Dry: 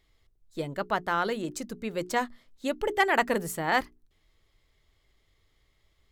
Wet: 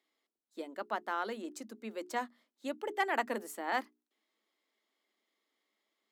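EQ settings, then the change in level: rippled Chebyshev high-pass 210 Hz, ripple 3 dB; -7.0 dB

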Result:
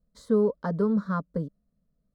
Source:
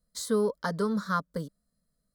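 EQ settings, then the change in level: LPF 3800 Hz 6 dB/oct; tilt shelf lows +9 dB, about 1200 Hz; -3.5 dB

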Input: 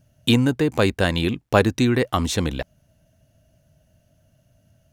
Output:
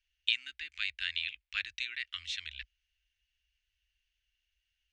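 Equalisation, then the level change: inverse Chebyshev band-stop 120–960 Hz, stop band 50 dB; LPF 8300 Hz 24 dB/oct; three-band isolator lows -13 dB, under 180 Hz, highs -23 dB, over 3600 Hz; -1.5 dB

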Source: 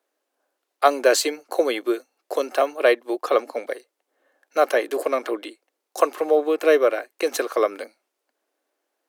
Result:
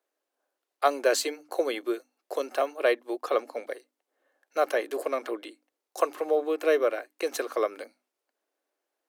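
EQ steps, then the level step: notches 50/100/150/200/250/300 Hz; -6.5 dB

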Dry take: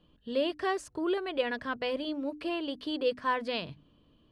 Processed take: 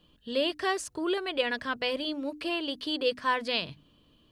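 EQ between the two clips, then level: high shelf 2200 Hz +10 dB; 0.0 dB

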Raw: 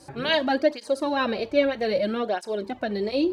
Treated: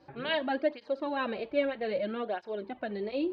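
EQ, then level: LPF 3500 Hz 24 dB/oct; low shelf 150 Hz -4.5 dB; notches 50/100 Hz; -7.0 dB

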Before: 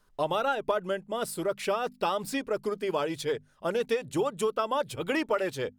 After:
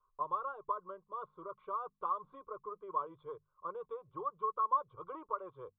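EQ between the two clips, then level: vocal tract filter a; fixed phaser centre 1200 Hz, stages 8; fixed phaser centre 2500 Hz, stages 6; +13.0 dB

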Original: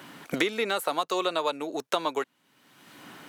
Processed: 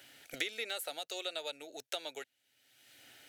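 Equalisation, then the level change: bell 350 Hz -14 dB 1.5 oct; fixed phaser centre 440 Hz, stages 4; -4.5 dB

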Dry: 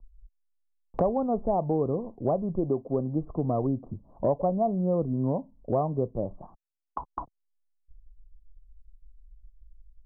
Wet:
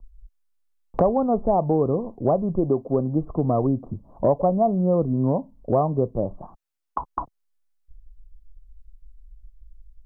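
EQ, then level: bell 1300 Hz +2.5 dB; +5.5 dB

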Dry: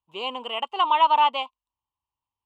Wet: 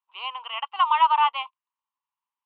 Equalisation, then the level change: HPF 1100 Hz 24 dB/oct; air absorption 360 m; high shelf 3700 Hz -10 dB; +8.0 dB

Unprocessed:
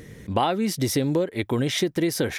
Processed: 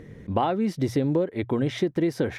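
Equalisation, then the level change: LPF 1200 Hz 6 dB/oct; notches 60/120 Hz; 0.0 dB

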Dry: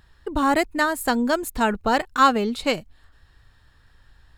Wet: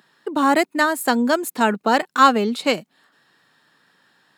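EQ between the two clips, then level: steep high-pass 170 Hz 36 dB/oct; +3.0 dB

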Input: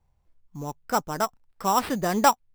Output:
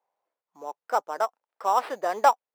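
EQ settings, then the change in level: HPF 540 Hz 24 dB/oct; tilt -4 dB/oct; 0.0 dB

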